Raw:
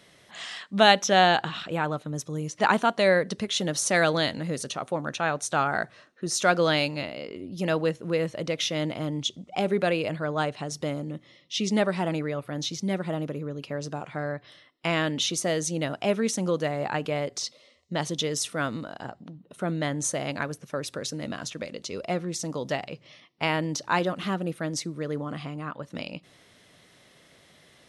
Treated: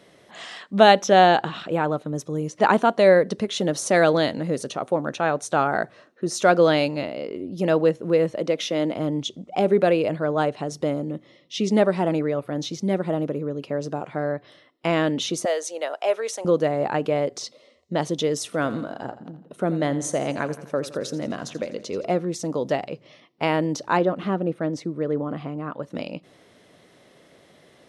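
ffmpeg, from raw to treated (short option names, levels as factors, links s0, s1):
-filter_complex "[0:a]asettb=1/sr,asplit=3[s0][s1][s2];[s0]atrim=end=8.364[s3];[s1]atrim=start=8.36:end=8.97,asetpts=PTS-STARTPTS,afade=t=in:d=0.004:c=qsin,afade=t=out:st=0.606:d=0.004:c=qsin,highpass=f=170:w=0.5412,highpass=f=170:w=1.3066[s4];[s2]atrim=start=8.966[s5];[s3][s4]acrossfade=d=0.004:c1=hsin:c2=qsin[s6];[s6][s5]acrossfade=d=0.004:c1=qsin:c2=hsin,asettb=1/sr,asplit=3[s7][s8][s9];[s7]atrim=end=15.454[s10];[s8]atrim=start=15.45:end=16.45,asetpts=PTS-STARTPTS,afade=t=in:d=0.004:c=qsin,afade=t=out:st=0.996:d=0.004:c=qsin,highpass=f=520:w=0.5412,highpass=f=520:w=1.3066[s11];[s9]atrim=start=16.446[s12];[s10][s11]acrossfade=d=0.004:c1=hsin:c2=qsin[s13];[s13][s12]acrossfade=d=0.004:c1=qsin:c2=hsin,asettb=1/sr,asplit=3[s14][s15][s16];[s14]atrim=end=18.454[s17];[s15]atrim=start=18.45:end=22.12,asetpts=PTS-STARTPTS,afade=t=in:d=0.004:c=qsin,afade=t=out:st=3.666:d=0.004:c=qsin,aecho=1:1:84|168|252|336|420:0.178|0.0978|0.0538|0.0296|0.0163,atrim=end_sample=161847[s18];[s16]atrim=start=22.116[s19];[s17][s18]acrossfade=d=0.004:c1=hsin:c2=qsin[s20];[s20][s19]acrossfade=d=0.004:c1=qsin:c2=hsin,asettb=1/sr,asplit=3[s21][s22][s23];[s21]atrim=end=23.974[s24];[s22]atrim=start=23.97:end=25.71,asetpts=PTS-STARTPTS,afade=t=in:d=0.004:c=qsin,afade=t=out:st=1.736:d=0.004:c=qsin,lowpass=f=2300:p=1[s25];[s23]atrim=start=25.706[s26];[s24][s25]acrossfade=d=0.004:c1=hsin:c2=qsin[s27];[s27][s26]acrossfade=d=0.004:c1=qsin:c2=hsin,equalizer=f=420:t=o:w=2.8:g=10,volume=0.75"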